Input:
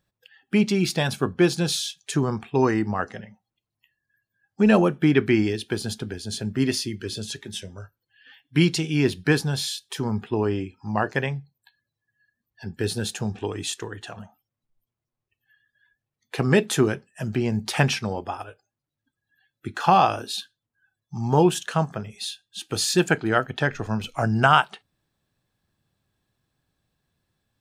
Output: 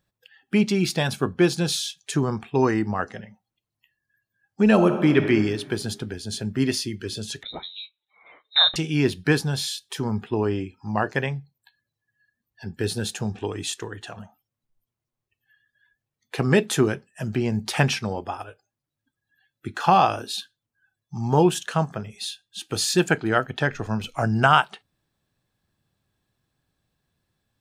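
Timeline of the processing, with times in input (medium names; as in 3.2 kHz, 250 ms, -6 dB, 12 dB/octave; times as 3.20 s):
4.73–5.23 s: reverb throw, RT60 1.6 s, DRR 6 dB
7.43–8.76 s: frequency inversion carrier 3.9 kHz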